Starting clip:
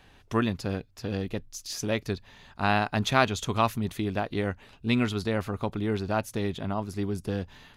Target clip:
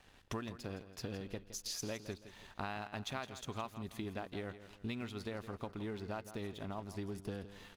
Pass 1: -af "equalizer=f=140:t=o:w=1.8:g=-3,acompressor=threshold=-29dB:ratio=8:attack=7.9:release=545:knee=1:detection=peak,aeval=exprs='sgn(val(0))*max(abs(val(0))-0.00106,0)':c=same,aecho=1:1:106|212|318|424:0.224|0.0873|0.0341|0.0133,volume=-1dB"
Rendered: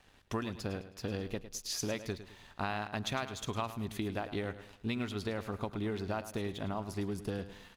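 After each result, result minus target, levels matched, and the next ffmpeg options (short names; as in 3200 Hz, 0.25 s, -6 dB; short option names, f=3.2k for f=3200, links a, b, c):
echo 59 ms early; compressor: peak gain reduction -5.5 dB
-af "equalizer=f=140:t=o:w=1.8:g=-3,acompressor=threshold=-29dB:ratio=8:attack=7.9:release=545:knee=1:detection=peak,aeval=exprs='sgn(val(0))*max(abs(val(0))-0.00106,0)':c=same,aecho=1:1:165|330|495|660:0.224|0.0873|0.0341|0.0133,volume=-1dB"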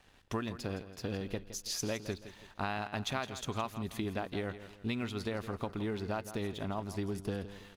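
compressor: peak gain reduction -5.5 dB
-af "equalizer=f=140:t=o:w=1.8:g=-3,acompressor=threshold=-35.5dB:ratio=8:attack=7.9:release=545:knee=1:detection=peak,aeval=exprs='sgn(val(0))*max(abs(val(0))-0.00106,0)':c=same,aecho=1:1:165|330|495|660:0.224|0.0873|0.0341|0.0133,volume=-1dB"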